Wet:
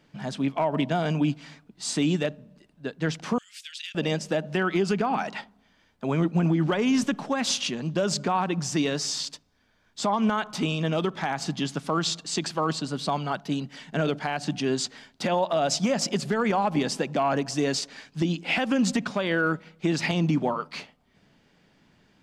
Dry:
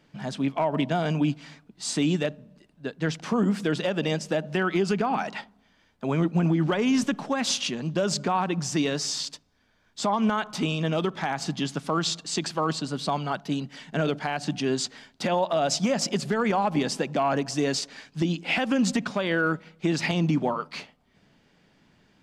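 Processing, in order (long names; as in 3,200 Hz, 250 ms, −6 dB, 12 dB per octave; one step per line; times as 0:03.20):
0:03.38–0:03.95: inverse Chebyshev high-pass filter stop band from 720 Hz, stop band 60 dB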